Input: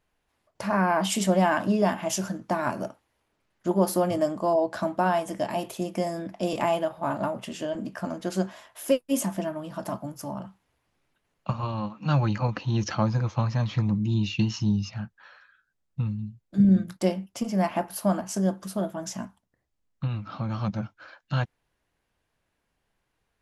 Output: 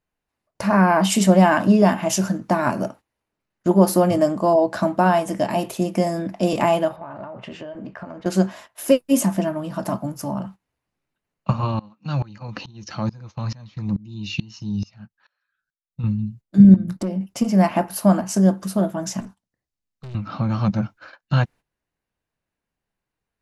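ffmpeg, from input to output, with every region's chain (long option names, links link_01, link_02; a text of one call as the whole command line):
ffmpeg -i in.wav -filter_complex "[0:a]asettb=1/sr,asplit=3[link_01][link_02][link_03];[link_01]atrim=end=6.964[link_04];[link_02]atrim=start=6.96:end=8.26,asetpts=PTS-STARTPTS,afade=type=in:duration=0.004:curve=qsin,afade=type=out:start_time=1.296:duration=0.004:curve=qsin,lowpass=2600,equalizer=frequency=220:width_type=o:width=1:gain=-9,acompressor=threshold=-37dB:ratio=16:attack=3.2:release=140:knee=1:detection=peak[link_05];[link_03]atrim=start=8.256[link_06];[link_04][link_05]acrossfade=duration=0.004:curve1=hsin:curve2=qsin[link_07];[link_07][link_06]acrossfade=duration=0.004:curve1=qsin:curve2=hsin,asettb=1/sr,asplit=3[link_08][link_09][link_10];[link_08]atrim=end=11.794[link_11];[link_09]atrim=start=11.79:end=16.04,asetpts=PTS-STARTPTS,afade=type=in:duration=0.004:curve=qsin,afade=type=out:start_time=4.246:duration=0.004:curve=qsin,equalizer=frequency=4600:width_type=o:width=1.4:gain=6,acompressor=threshold=-27dB:ratio=2:attack=3.2:release=140:knee=1:detection=peak,aeval=exprs='val(0)*pow(10,-25*if(lt(mod(-2.3*n/s,1),2*abs(-2.3)/1000),1-mod(-2.3*n/s,1)/(2*abs(-2.3)/1000),(mod(-2.3*n/s,1)-2*abs(-2.3)/1000)/(1-2*abs(-2.3)/1000))/20)':channel_layout=same[link_12];[link_10]atrim=start=16.036[link_13];[link_11][link_12]acrossfade=duration=0.004:curve1=hsin:curve2=qsin[link_14];[link_14][link_13]acrossfade=duration=0.004:curve1=qsin:curve2=hsin,asettb=1/sr,asplit=3[link_15][link_16][link_17];[link_15]atrim=end=16.744[link_18];[link_16]atrim=start=16.74:end=17.21,asetpts=PTS-STARTPTS,afade=type=in:duration=0.004:curve=qsin,afade=type=out:start_time=0.466:duration=0.004:curve=qsin,tiltshelf=frequency=710:gain=6,acompressor=threshold=-30dB:ratio=4:attack=3.2:release=140:knee=1:detection=peak,asoftclip=type=hard:threshold=-26dB[link_19];[link_17]atrim=start=17.206[link_20];[link_18][link_19]acrossfade=duration=0.004:curve1=hsin:curve2=qsin[link_21];[link_21][link_20]acrossfade=duration=0.004:curve1=qsin:curve2=hsin,asettb=1/sr,asplit=3[link_22][link_23][link_24];[link_22]atrim=end=19.204[link_25];[link_23]atrim=start=19.2:end=20.15,asetpts=PTS-STARTPTS,afade=type=in:duration=0.004:curve=qsin,afade=type=out:start_time=0.946:duration=0.004:curve=qsin,equalizer=frequency=5000:width_type=o:width=2.1:gain=7,acrossover=split=430|3000[link_26][link_27][link_28];[link_27]acompressor=threshold=-55dB:ratio=1.5:attack=3.2:release=140:knee=2.83:detection=peak[link_29];[link_26][link_29][link_28]amix=inputs=3:normalize=0,aeval=exprs='(tanh(126*val(0)+0.4)-tanh(0.4))/126':channel_layout=same[link_30];[link_24]atrim=start=20.146[link_31];[link_25][link_30]acrossfade=duration=0.004:curve1=hsin:curve2=qsin[link_32];[link_32][link_31]acrossfade=duration=0.004:curve1=qsin:curve2=hsin,agate=range=-14dB:threshold=-47dB:ratio=16:detection=peak,equalizer=frequency=190:width_type=o:width=1.4:gain=3.5,bandreject=frequency=3300:width=16,volume=6dB" out.wav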